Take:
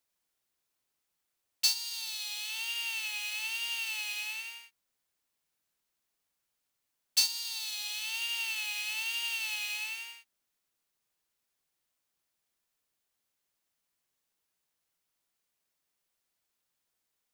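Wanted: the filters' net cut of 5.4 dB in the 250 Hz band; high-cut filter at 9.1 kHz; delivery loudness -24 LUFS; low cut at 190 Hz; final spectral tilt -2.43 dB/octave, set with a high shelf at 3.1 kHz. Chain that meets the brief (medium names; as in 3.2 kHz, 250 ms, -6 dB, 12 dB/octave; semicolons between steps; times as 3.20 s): high-pass 190 Hz; low-pass 9.1 kHz; peaking EQ 250 Hz -4.5 dB; treble shelf 3.1 kHz +7 dB; trim +4.5 dB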